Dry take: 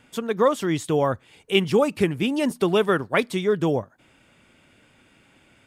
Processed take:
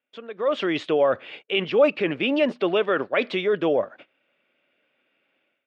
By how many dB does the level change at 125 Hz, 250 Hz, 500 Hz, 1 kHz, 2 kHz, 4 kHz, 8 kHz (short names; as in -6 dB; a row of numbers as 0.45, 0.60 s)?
-10.5 dB, -3.0 dB, +0.5 dB, -2.5 dB, +1.0 dB, 0.0 dB, under -15 dB